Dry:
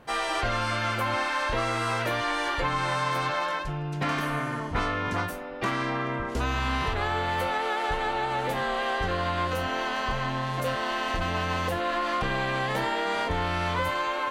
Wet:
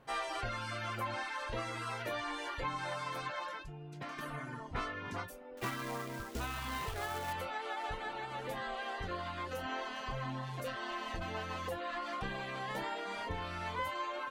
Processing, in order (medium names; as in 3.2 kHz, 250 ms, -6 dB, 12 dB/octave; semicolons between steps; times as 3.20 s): reverb removal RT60 1 s; 3.61–4.19 s: compression 2:1, threshold -36 dBFS, peak gain reduction 6.5 dB; flange 0.2 Hz, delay 7.3 ms, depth 3.3 ms, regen +60%; 5.57–7.33 s: companded quantiser 4-bit; trim -5 dB